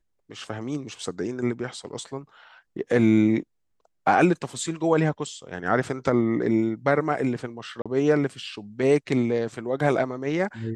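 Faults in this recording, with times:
7.82–7.86 s: dropout 36 ms

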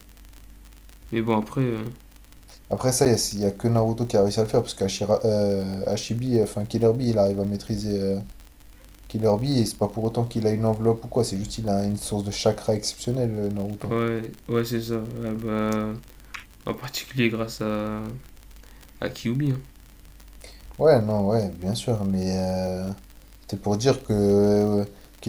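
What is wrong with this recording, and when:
crackle 43 per s -31 dBFS
3.05–3.06 s: dropout 7.6 ms

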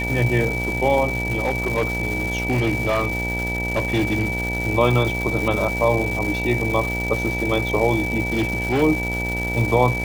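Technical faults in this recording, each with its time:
buzz 60 Hz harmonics 16 -27 dBFS
crackle 490 per s -25 dBFS
whine 2.3 kHz -25 dBFS
1.12–4.43 s: clipped -15.5 dBFS
8.27–8.83 s: clipped -16 dBFS

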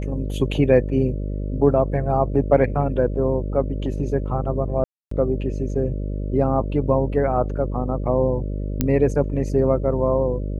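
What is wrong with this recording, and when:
buzz 50 Hz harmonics 12 -26 dBFS
4.84–5.11 s: dropout 274 ms
8.81 s: pop -6 dBFS

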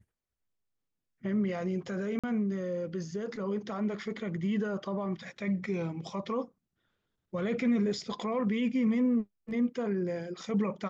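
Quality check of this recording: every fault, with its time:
2.19–2.24 s: dropout 46 ms

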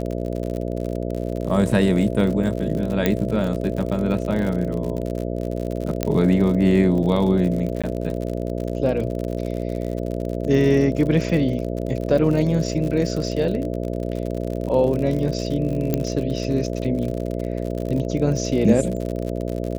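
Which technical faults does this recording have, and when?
buzz 60 Hz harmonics 11 -26 dBFS
crackle 63 per s -27 dBFS
3.06 s: pop -5 dBFS
6.03 s: pop -6 dBFS
7.82–7.84 s: dropout 16 ms
15.94 s: pop -8 dBFS

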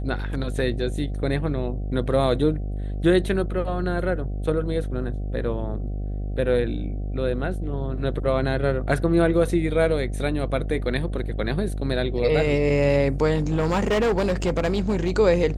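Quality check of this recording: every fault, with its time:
buzz 50 Hz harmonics 15 -28 dBFS
13.35–15.10 s: clipped -17.5 dBFS

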